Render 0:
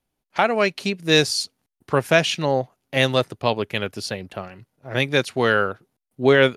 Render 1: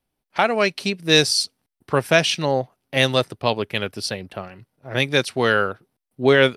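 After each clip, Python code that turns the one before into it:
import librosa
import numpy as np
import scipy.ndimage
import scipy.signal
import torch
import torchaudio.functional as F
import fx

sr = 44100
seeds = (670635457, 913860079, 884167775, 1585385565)

y = fx.notch(x, sr, hz=6800.0, q=5.6)
y = fx.dynamic_eq(y, sr, hz=6800.0, q=0.74, threshold_db=-38.0, ratio=4.0, max_db=6)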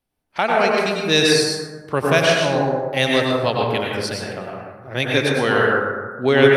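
y = fx.echo_feedback(x, sr, ms=117, feedback_pct=30, wet_db=-18)
y = fx.rev_plate(y, sr, seeds[0], rt60_s=1.5, hf_ratio=0.3, predelay_ms=85, drr_db=-2.5)
y = F.gain(torch.from_numpy(y), -2.0).numpy()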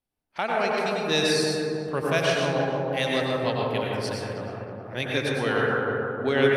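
y = fx.echo_filtered(x, sr, ms=316, feedback_pct=61, hz=1000.0, wet_db=-3.0)
y = F.gain(torch.from_numpy(y), -8.0).numpy()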